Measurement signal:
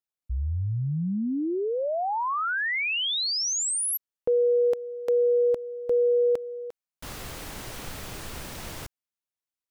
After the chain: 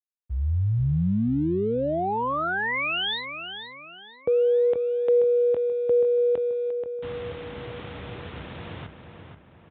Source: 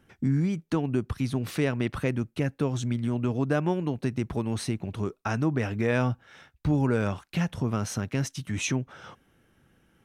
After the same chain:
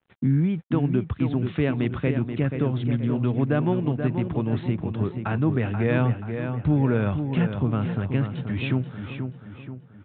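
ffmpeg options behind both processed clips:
-filter_complex "[0:a]highpass=f=68:w=0.5412,highpass=f=68:w=1.3066,lowshelf=f=280:g=5.5,aresample=8000,aeval=exprs='sgn(val(0))*max(abs(val(0))-0.00178,0)':c=same,aresample=44100,asplit=2[a][b];[b]adelay=482,lowpass=f=2.9k:p=1,volume=-7dB,asplit=2[c][d];[d]adelay=482,lowpass=f=2.9k:p=1,volume=0.47,asplit=2[e][f];[f]adelay=482,lowpass=f=2.9k:p=1,volume=0.47,asplit=2[g][h];[h]adelay=482,lowpass=f=2.9k:p=1,volume=0.47,asplit=2[i][j];[j]adelay=482,lowpass=f=2.9k:p=1,volume=0.47,asplit=2[k][l];[l]adelay=482,lowpass=f=2.9k:p=1,volume=0.47[m];[a][c][e][g][i][k][m]amix=inputs=7:normalize=0"

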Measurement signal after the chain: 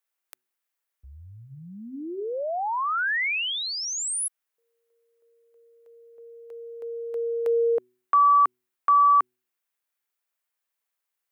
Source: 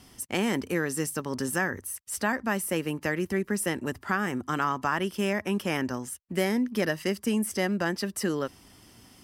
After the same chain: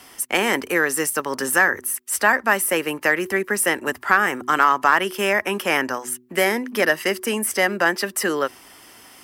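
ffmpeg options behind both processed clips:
-filter_complex "[0:a]acrossover=split=320 2300:gain=0.178 1 0.126[a][b][c];[a][b][c]amix=inputs=3:normalize=0,bandreject=f=123.7:t=h:w=4,bandreject=f=247.4:t=h:w=4,bandreject=f=371.1:t=h:w=4,crystalizer=i=7.5:c=0,asplit=2[d][e];[e]aeval=exprs='clip(val(0),-1,0.119)':c=same,volume=-5.5dB[f];[d][f]amix=inputs=2:normalize=0,volume=4.5dB"

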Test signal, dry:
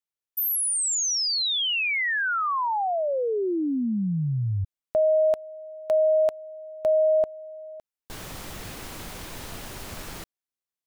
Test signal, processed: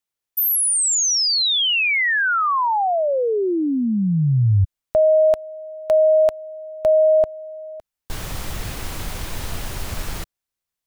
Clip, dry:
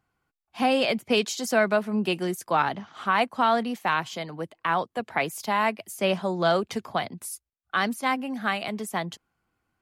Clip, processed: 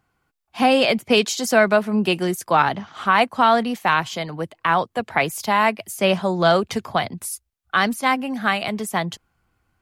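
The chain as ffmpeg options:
-af "asubboost=boost=2:cutoff=140,volume=6.5dB"

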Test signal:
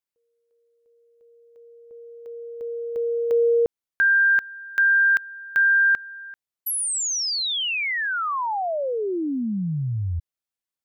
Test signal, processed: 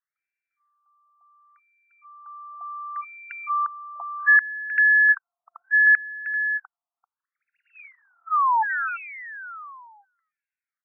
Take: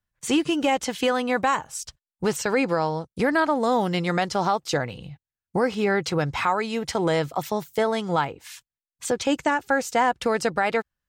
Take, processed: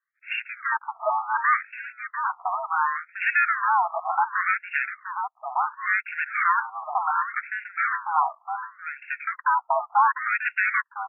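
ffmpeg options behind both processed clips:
-filter_complex "[0:a]highpass=f=480:t=q:w=0.5412,highpass=f=480:t=q:w=1.307,lowpass=f=2.8k:t=q:w=0.5176,lowpass=f=2.8k:t=q:w=0.7071,lowpass=f=2.8k:t=q:w=1.932,afreqshift=120,asplit=2[a][b];[b]alimiter=limit=-19dB:level=0:latency=1,volume=1dB[c];[a][c]amix=inputs=2:normalize=0,aeval=exprs='max(val(0),0)':c=same,asplit=2[d][e];[e]adelay=699.7,volume=-8dB,highshelf=f=4k:g=-15.7[f];[d][f]amix=inputs=2:normalize=0,afftfilt=real='re*between(b*sr/1024,910*pow(2000/910,0.5+0.5*sin(2*PI*0.69*pts/sr))/1.41,910*pow(2000/910,0.5+0.5*sin(2*PI*0.69*pts/sr))*1.41)':imag='im*between(b*sr/1024,910*pow(2000/910,0.5+0.5*sin(2*PI*0.69*pts/sr))/1.41,910*pow(2000/910,0.5+0.5*sin(2*PI*0.69*pts/sr))*1.41)':win_size=1024:overlap=0.75,volume=5.5dB"

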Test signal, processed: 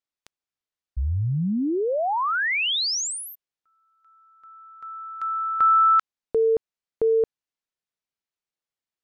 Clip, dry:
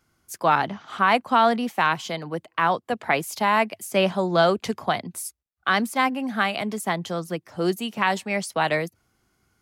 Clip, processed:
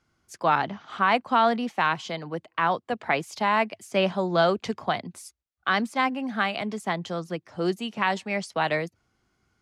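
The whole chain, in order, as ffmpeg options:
-af "lowpass=6.4k,volume=-2.5dB"

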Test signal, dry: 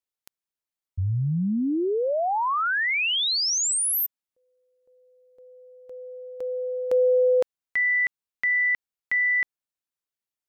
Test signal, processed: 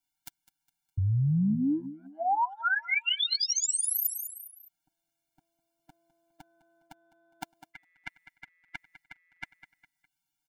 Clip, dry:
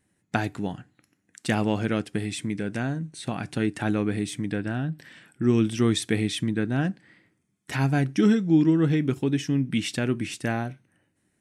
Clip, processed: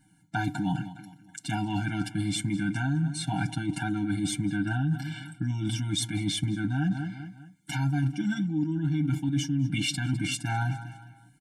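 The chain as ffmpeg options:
-af "aecho=1:1:6.5:0.84,aecho=1:1:205|410|615:0.112|0.0438|0.0171,areverse,acompressor=threshold=-31dB:ratio=16:attack=11:release=82:knee=6:detection=rms,areverse,afftfilt=real='re*eq(mod(floor(b*sr/1024/340),2),0)':imag='im*eq(mod(floor(b*sr/1024/340),2),0)':win_size=1024:overlap=0.75,volume=7.5dB"

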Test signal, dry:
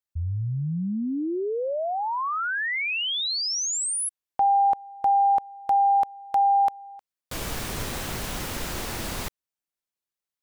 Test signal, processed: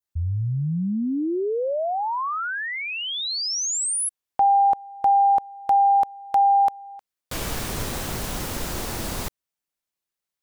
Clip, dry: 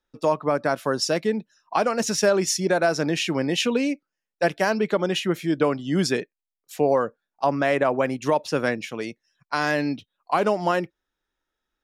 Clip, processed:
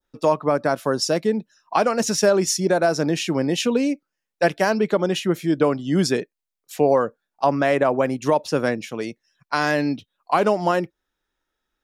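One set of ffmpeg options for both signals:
-af "adynamicequalizer=threshold=0.01:dfrequency=2300:dqfactor=0.72:tfrequency=2300:tqfactor=0.72:attack=5:release=100:ratio=0.375:range=3:mode=cutabove:tftype=bell,volume=3dB"

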